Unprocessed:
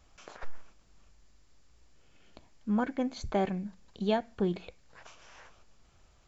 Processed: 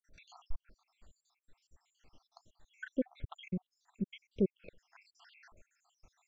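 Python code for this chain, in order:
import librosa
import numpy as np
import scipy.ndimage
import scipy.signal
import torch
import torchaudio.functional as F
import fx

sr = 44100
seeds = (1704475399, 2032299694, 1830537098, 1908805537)

y = fx.spec_dropout(x, sr, seeds[0], share_pct=80)
y = fx.env_lowpass_down(y, sr, base_hz=1200.0, full_db=-34.0)
y = fx.dynamic_eq(y, sr, hz=1000.0, q=1.8, threshold_db=-60.0, ratio=4.0, max_db=-6)
y = F.gain(torch.from_numpy(y), 1.0).numpy()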